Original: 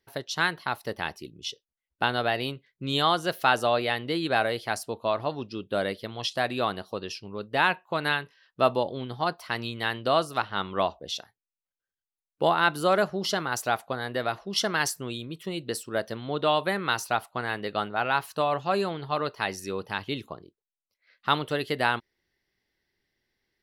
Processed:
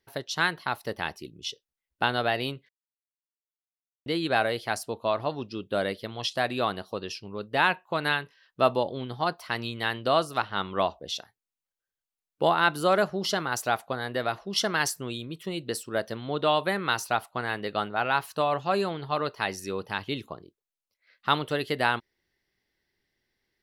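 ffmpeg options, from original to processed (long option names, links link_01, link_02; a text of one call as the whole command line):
ffmpeg -i in.wav -filter_complex "[0:a]asplit=3[link_01][link_02][link_03];[link_01]atrim=end=2.69,asetpts=PTS-STARTPTS,afade=type=out:start_time=2.686:duration=0.004:curve=hsin[link_04];[link_02]atrim=start=2.69:end=4.06,asetpts=PTS-STARTPTS,volume=0[link_05];[link_03]atrim=start=4.06,asetpts=PTS-STARTPTS,afade=type=in:duration=0.004:curve=hsin[link_06];[link_04][link_05][link_06]concat=n=3:v=0:a=1" out.wav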